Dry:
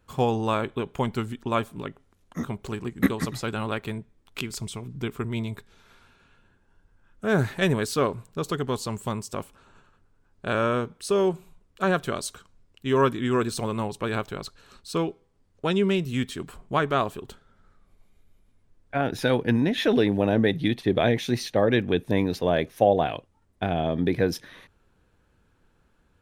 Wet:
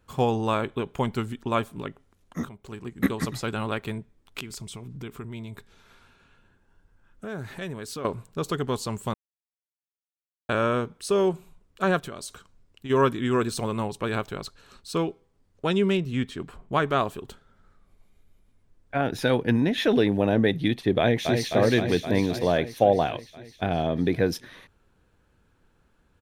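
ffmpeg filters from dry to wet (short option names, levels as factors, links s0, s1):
-filter_complex "[0:a]asettb=1/sr,asplit=3[s0][s1][s2];[s0]atrim=end=4.404[s3];[s1]atrim=start=4.4:end=8.05,asetpts=PTS-STARTPTS,afade=t=in:d=0.004:c=qsin,afade=t=out:st=3.646:d=0.004:c=qsin,acompressor=threshold=0.0158:ratio=2.5:attack=3.2:release=140:knee=1:detection=peak[s4];[s2]atrim=start=8.046[s5];[s3][s4]acrossfade=d=0.004:c1=hsin:c2=qsin[s6];[s6][s5]acrossfade=d=0.004:c1=qsin:c2=hsin,asplit=3[s7][s8][s9];[s7]afade=t=out:st=11.99:d=0.02[s10];[s8]acompressor=threshold=0.0224:ratio=5:attack=3.2:release=140:knee=1:detection=peak,afade=t=in:st=11.99:d=0.02,afade=t=out:st=12.89:d=0.02[s11];[s9]afade=t=in:st=12.89:d=0.02[s12];[s10][s11][s12]amix=inputs=3:normalize=0,asettb=1/sr,asplit=3[s13][s14][s15];[s13]atrim=end=15.974[s16];[s14]atrim=start=15.97:end=16.73,asetpts=PTS-STARTPTS,afade=t=in:d=0.004:c=qsin,afade=t=out:st=0.756:d=0.004:c=qsin,lowpass=f=3000:p=1[s17];[s15]atrim=start=16.726[s18];[s16][s17]acrossfade=d=0.004:c1=hsin:c2=qsin[s19];[s19][s18]acrossfade=d=0.004:c1=qsin:c2=hsin,asplit=2[s20][s21];[s21]afade=t=in:st=20.99:d=0.01,afade=t=out:st=21.48:d=0.01,aecho=0:1:260|520|780|1040|1300|1560|1820|2080|2340|2600|2860|3120:0.595662|0.446747|0.33506|0.251295|0.188471|0.141353|0.106015|0.0795113|0.0596335|0.0447251|0.0335438|0.0251579[s22];[s20][s22]amix=inputs=2:normalize=0,asplit=4[s23][s24][s25][s26];[s23]atrim=end=2.49,asetpts=PTS-STARTPTS,afade=t=out:st=2.486:d=0.004:c=hsin:silence=0.188365[s27];[s24]atrim=start=2.49:end=9.14,asetpts=PTS-STARTPTS,afade=t=in:d=0.75:silence=0.188365,afade=t=out:st=6.646:d=0.004:c=hsin[s28];[s25]atrim=start=9.14:end=10.49,asetpts=PTS-STARTPTS,volume=0[s29];[s26]atrim=start=10.49,asetpts=PTS-STARTPTS,afade=t=in:d=0.004:c=hsin[s30];[s27][s28][s29][s30]concat=n=4:v=0:a=1"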